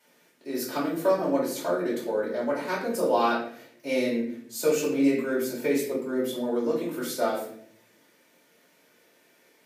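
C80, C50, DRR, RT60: 8.5 dB, 5.0 dB, −7.5 dB, 0.65 s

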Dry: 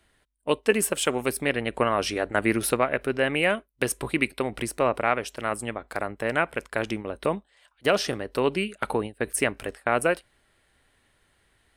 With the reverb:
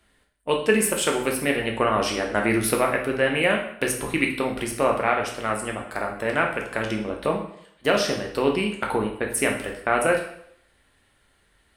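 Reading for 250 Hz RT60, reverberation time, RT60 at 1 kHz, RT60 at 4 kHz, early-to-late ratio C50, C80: 0.60 s, 0.70 s, 0.70 s, 0.60 s, 6.5 dB, 10.5 dB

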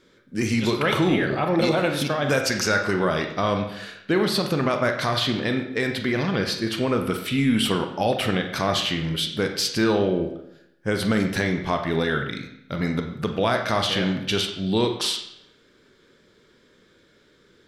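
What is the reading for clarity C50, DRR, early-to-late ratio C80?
7.0 dB, 4.5 dB, 9.5 dB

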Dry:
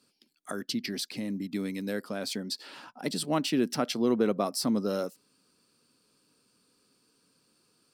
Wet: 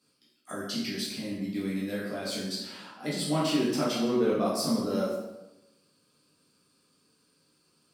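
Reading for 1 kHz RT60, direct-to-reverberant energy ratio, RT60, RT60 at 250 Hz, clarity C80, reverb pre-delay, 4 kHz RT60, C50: 0.95 s, −7.5 dB, 0.95 s, 1.1 s, 4.5 dB, 7 ms, 0.75 s, 1.5 dB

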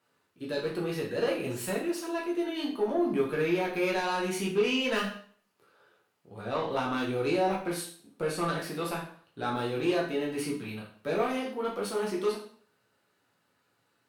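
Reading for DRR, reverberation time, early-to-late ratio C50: −3.5 dB, 0.50 s, 6.5 dB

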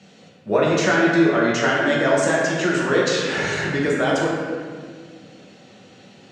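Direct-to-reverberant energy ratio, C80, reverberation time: −5.5 dB, 1.0 dB, 1.8 s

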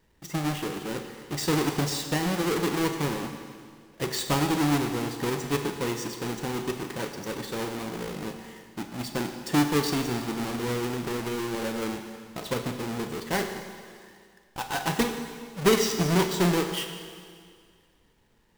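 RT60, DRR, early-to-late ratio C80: 2.0 s, 5.5 dB, 7.5 dB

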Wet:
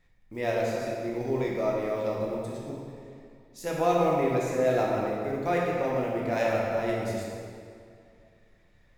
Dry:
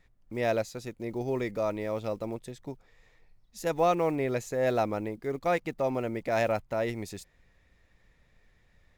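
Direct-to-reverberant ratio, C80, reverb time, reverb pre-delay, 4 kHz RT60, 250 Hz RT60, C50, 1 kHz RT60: −4.0 dB, 0.5 dB, 2.4 s, 10 ms, 1.7 s, 2.4 s, −1.0 dB, 2.3 s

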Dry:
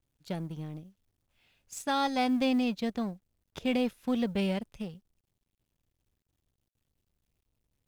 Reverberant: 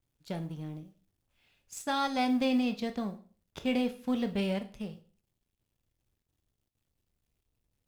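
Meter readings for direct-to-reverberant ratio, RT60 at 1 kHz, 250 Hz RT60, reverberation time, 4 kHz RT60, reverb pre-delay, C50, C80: 8.0 dB, 0.40 s, 0.50 s, 0.40 s, 0.35 s, 16 ms, 14.5 dB, 18.5 dB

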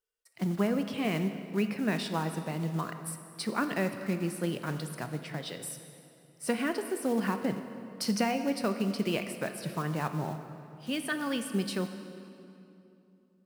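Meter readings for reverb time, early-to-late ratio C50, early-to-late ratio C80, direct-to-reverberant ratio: 2.9 s, 8.5 dB, 9.5 dB, 7.5 dB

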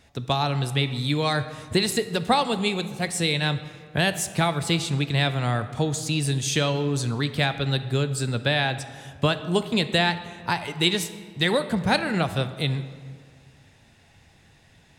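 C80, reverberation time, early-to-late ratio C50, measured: 13.5 dB, 1.9 s, 12.0 dB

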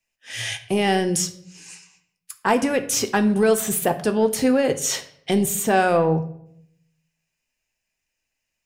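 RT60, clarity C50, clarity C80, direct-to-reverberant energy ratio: 0.70 s, 13.5 dB, 17.0 dB, 7.0 dB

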